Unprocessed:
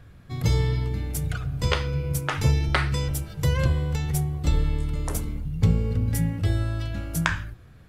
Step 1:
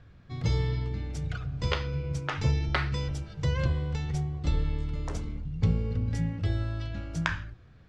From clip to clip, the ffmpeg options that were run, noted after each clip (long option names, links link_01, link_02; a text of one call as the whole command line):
ffmpeg -i in.wav -af "lowpass=frequency=6100:width=0.5412,lowpass=frequency=6100:width=1.3066,volume=-5dB" out.wav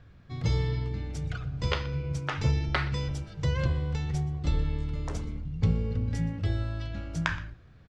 ffmpeg -i in.wav -filter_complex "[0:a]asplit=2[link_01][link_02];[link_02]adelay=122.4,volume=-19dB,highshelf=frequency=4000:gain=-2.76[link_03];[link_01][link_03]amix=inputs=2:normalize=0" out.wav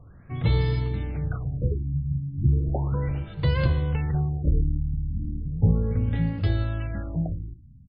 ffmpeg -i in.wav -af "afftfilt=real='re*lt(b*sr/1024,260*pow(5100/260,0.5+0.5*sin(2*PI*0.35*pts/sr)))':imag='im*lt(b*sr/1024,260*pow(5100/260,0.5+0.5*sin(2*PI*0.35*pts/sr)))':win_size=1024:overlap=0.75,volume=5dB" out.wav